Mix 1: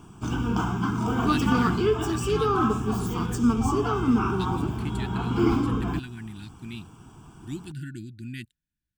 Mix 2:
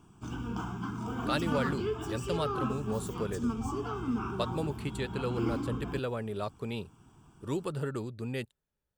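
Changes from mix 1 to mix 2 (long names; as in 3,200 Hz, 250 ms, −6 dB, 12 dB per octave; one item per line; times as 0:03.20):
speech: remove linear-phase brick-wall band-stop 360–1,400 Hz
background −10.5 dB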